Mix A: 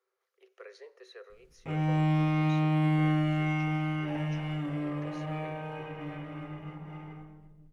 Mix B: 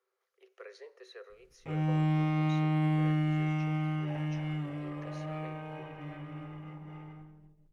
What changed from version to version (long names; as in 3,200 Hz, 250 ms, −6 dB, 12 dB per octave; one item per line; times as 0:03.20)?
background: send off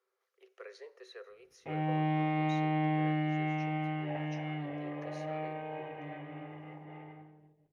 background: add loudspeaker in its box 130–3,600 Hz, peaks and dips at 180 Hz −9 dB, 460 Hz +5 dB, 720 Hz +8 dB, 1,300 Hz −8 dB, 1,900 Hz +5 dB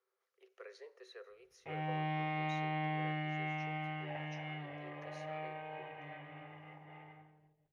speech −3.5 dB
background: add parametric band 290 Hz −12 dB 2.1 octaves